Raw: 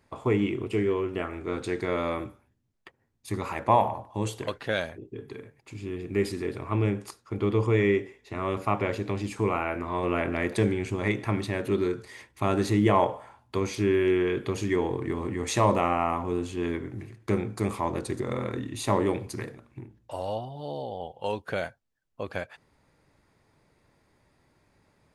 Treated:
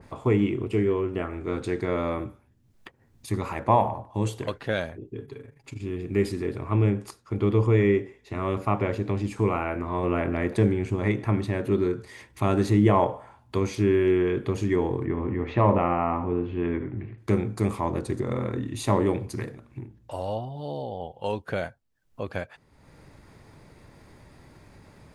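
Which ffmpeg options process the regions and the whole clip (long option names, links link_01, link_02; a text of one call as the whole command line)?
ffmpeg -i in.wav -filter_complex "[0:a]asettb=1/sr,asplit=3[link_01][link_02][link_03];[link_01]atrim=end=5.254[link_04];[link_02]atrim=start=5.25:end=5.81,asetpts=PTS-STARTPTS,afade=type=in:duration=0.004:curve=qsin,afade=type=out:start_time=0.556:duration=0.004:curve=qsin,tremolo=f=25:d=0.75,aecho=1:1:7.2:0.49,atrim=end_sample=24696[link_05];[link_03]atrim=start=5.806[link_06];[link_04][link_05]acrossfade=duration=0.004:curve1=hsin:curve2=qsin[link_07];[link_07][link_06]acrossfade=duration=0.004:curve1=qsin:curve2=hsin,asettb=1/sr,asplit=3[link_08][link_09][link_10];[link_08]atrim=end=15.054[link_11];[link_09]atrim=start=15.05:end=17.18,asetpts=PTS-STARTPTS,afade=type=in:duration=0.004:curve=qsin,afade=type=out:start_time=2.126:duration=0.004:curve=qsin,lowpass=frequency=2900:width=0.5412,lowpass=frequency=2900:width=1.3066,aecho=1:1:75:0.251,atrim=end_sample=93933[link_12];[link_10]atrim=start=17.176[link_13];[link_11][link_12]acrossfade=duration=0.004:curve1=hsin:curve2=qsin[link_14];[link_14][link_13]acrossfade=duration=0.004:curve1=qsin:curve2=hsin,lowshelf=frequency=270:gain=5.5,acompressor=mode=upward:threshold=-39dB:ratio=2.5,adynamicequalizer=threshold=0.00794:dfrequency=2000:dqfactor=0.7:tfrequency=2000:tqfactor=0.7:attack=5:release=100:ratio=0.375:range=3:mode=cutabove:tftype=highshelf" out.wav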